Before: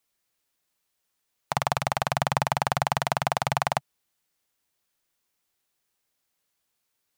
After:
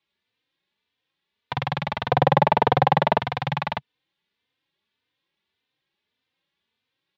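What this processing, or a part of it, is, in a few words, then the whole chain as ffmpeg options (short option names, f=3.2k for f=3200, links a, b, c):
barber-pole flanger into a guitar amplifier: -filter_complex "[0:a]asplit=2[a][b];[b]adelay=3.2,afreqshift=1.7[c];[a][c]amix=inputs=2:normalize=1,asoftclip=type=tanh:threshold=-20dB,highpass=83,equalizer=f=680:t=q:w=4:g=-10,equalizer=f=1.3k:t=q:w=4:g=-7,equalizer=f=3.6k:t=q:w=4:g=5,lowpass=f=3.7k:w=0.5412,lowpass=f=3.7k:w=1.3066,asettb=1/sr,asplit=3[d][e][f];[d]atrim=end=2.094[g];[e]atrim=start=2.09:end=3.2,asetpts=PTS-STARTPTS,afade=t=in:d=0.004:c=qsin,afade=t=out:st=1.106:d=0.004:c=qsin,equalizer=f=470:w=0.59:g=15[h];[f]atrim=start=3.196[i];[g][h]acrossfade=d=0.004:c1=hsin:c2=qsin[j];[j][i]acrossfade=d=0.004:c1=qsin:c2=hsin,volume=7.5dB"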